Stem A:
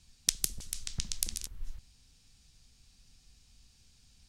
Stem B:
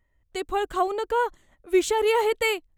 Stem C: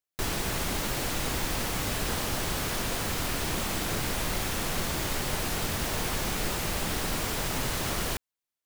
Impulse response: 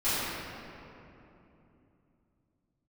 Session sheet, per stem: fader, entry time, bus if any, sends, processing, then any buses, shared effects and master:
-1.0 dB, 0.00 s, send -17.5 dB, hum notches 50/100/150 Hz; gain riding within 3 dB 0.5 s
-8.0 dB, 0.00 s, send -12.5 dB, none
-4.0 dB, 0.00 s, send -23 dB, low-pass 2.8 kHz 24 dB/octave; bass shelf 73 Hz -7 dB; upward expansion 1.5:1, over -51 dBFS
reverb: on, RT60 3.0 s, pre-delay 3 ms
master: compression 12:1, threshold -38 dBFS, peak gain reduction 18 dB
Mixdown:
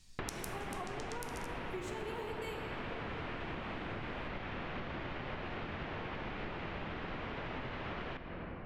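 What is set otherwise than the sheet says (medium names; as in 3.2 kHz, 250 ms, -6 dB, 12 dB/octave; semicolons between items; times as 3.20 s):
stem A: missing gain riding within 3 dB 0.5 s; stem C -4.0 dB -> +5.5 dB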